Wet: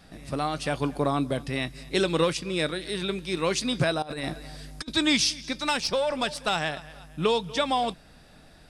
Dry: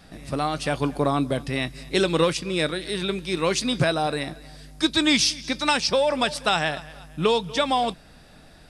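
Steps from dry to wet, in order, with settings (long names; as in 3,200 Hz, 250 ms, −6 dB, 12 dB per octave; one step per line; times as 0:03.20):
0:04.02–0:04.92: compressor whose output falls as the input rises −30 dBFS, ratio −0.5
0:05.45–0:06.84: tube saturation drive 12 dB, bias 0.4
level −3 dB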